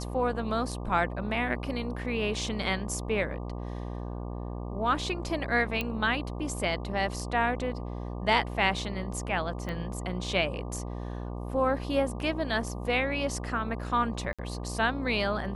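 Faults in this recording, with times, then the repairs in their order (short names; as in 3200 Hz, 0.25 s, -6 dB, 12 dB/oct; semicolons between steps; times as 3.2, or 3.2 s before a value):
buzz 60 Hz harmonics 20 -36 dBFS
5.81 pop -16 dBFS
9.69 pop -23 dBFS
14.33–14.39 gap 56 ms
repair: de-click; de-hum 60 Hz, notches 20; interpolate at 14.33, 56 ms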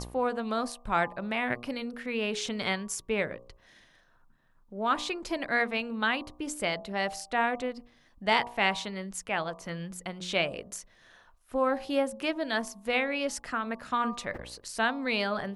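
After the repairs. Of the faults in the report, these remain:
9.69 pop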